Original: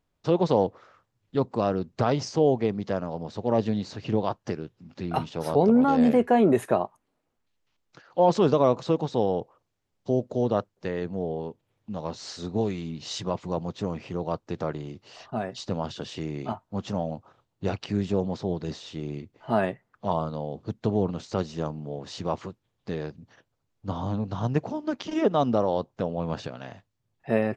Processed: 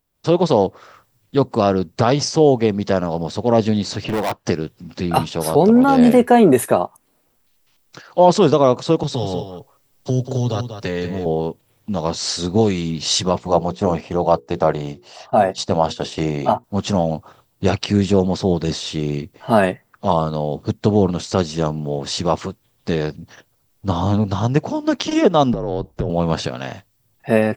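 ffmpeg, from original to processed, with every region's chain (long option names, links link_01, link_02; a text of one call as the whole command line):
ffmpeg -i in.wav -filter_complex "[0:a]asettb=1/sr,asplit=3[link_01][link_02][link_03];[link_01]atrim=end=4.044[link_04];[link_02]atrim=start=4.04:end=4.46,asetpts=PTS-STARTPTS,afade=type=in:duration=0.004:curve=qsin,afade=type=out:start_time=0.416:duration=0.004:curve=qsin,bass=frequency=250:gain=-5,treble=frequency=4000:gain=-10,asoftclip=type=hard:threshold=-29dB[link_05];[link_03]atrim=start=4.456[link_06];[link_04][link_05]acrossfade=duration=0.004:curve1=hsin:curve2=qsin[link_07];[link_07][link_06]acrossfade=duration=0.004:curve1=qsin:curve2=hsin,asettb=1/sr,asplit=3[link_08][link_09][link_10];[link_08]atrim=end=9.034[link_11];[link_09]atrim=start=9.03:end=11.26,asetpts=PTS-STARTPTS,afade=type=in:duration=0.004:curve=qsin,afade=type=out:start_time=2.226:duration=0.004:curve=qsin,acrossover=split=140|3000[link_12][link_13][link_14];[link_13]acompressor=threshold=-34dB:ratio=4:attack=3.2:release=140:knee=2.83:detection=peak[link_15];[link_12][link_15][link_14]amix=inputs=3:normalize=0,aecho=1:1:7.2:0.54,atrim=end_sample=98343,aecho=1:1:189:0.335,atrim=end_sample=98343[link_16];[link_10]atrim=start=11.256[link_17];[link_11][link_16]acrossfade=duration=0.004:curve1=hsin:curve2=qsin[link_18];[link_18][link_17]acrossfade=duration=0.004:curve1=qsin:curve2=hsin,asettb=1/sr,asplit=3[link_19][link_20][link_21];[link_19]atrim=end=13.354[link_22];[link_20]atrim=start=13.35:end=16.64,asetpts=PTS-STARTPTS,afade=type=in:duration=0.004:curve=qsin,afade=type=out:start_time=3.286:duration=0.004:curve=qsin,bandreject=frequency=60:width_type=h:width=6,bandreject=frequency=120:width_type=h:width=6,bandreject=frequency=180:width_type=h:width=6,bandreject=frequency=240:width_type=h:width=6,bandreject=frequency=300:width_type=h:width=6,bandreject=frequency=360:width_type=h:width=6,bandreject=frequency=420:width_type=h:width=6,bandreject=frequency=480:width_type=h:width=6,agate=range=-9dB:threshold=-40dB:ratio=16:release=100:detection=peak,equalizer=frequency=720:width=1.3:gain=8.5[link_23];[link_21]atrim=start=16.636[link_24];[link_22][link_23]acrossfade=duration=0.004:curve1=hsin:curve2=qsin[link_25];[link_25][link_24]acrossfade=duration=0.004:curve1=qsin:curve2=hsin,asettb=1/sr,asplit=3[link_26][link_27][link_28];[link_26]atrim=end=25.534[link_29];[link_27]atrim=start=25.53:end=26.1,asetpts=PTS-STARTPTS,afade=type=in:duration=0.004:curve=qsin,afade=type=out:start_time=0.566:duration=0.004:curve=qsin,tiltshelf=frequency=700:gain=6,acompressor=threshold=-27dB:ratio=10:attack=3.2:release=140:knee=1:detection=peak,afreqshift=-56[link_30];[link_28]atrim=start=26.096[link_31];[link_29][link_30]acrossfade=duration=0.004:curve1=hsin:curve2=qsin[link_32];[link_32][link_31]acrossfade=duration=0.004:curve1=qsin:curve2=hsin,aemphasis=mode=production:type=50fm,dynaudnorm=framelen=130:gausssize=3:maxgain=12dB,bandreject=frequency=6600:width=19" out.wav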